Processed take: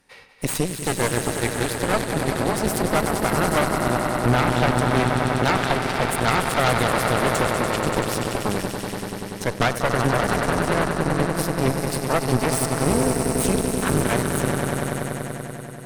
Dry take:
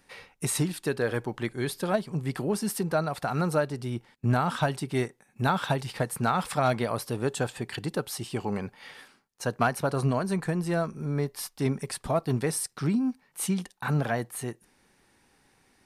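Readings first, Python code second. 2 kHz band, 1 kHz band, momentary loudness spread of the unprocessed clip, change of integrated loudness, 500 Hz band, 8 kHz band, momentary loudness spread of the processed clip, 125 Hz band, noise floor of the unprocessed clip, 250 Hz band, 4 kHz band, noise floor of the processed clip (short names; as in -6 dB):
+10.5 dB, +9.0 dB, 8 LU, +7.0 dB, +7.5 dB, +8.5 dB, 7 LU, +5.5 dB, -66 dBFS, +6.5 dB, +10.0 dB, -34 dBFS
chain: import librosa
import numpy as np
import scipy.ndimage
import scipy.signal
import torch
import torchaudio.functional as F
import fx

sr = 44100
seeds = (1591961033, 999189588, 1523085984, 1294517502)

y = fx.echo_swell(x, sr, ms=96, loudest=5, wet_db=-8.0)
y = fx.cheby_harmonics(y, sr, harmonics=(6,), levels_db=(-8,), full_scale_db=-9.5)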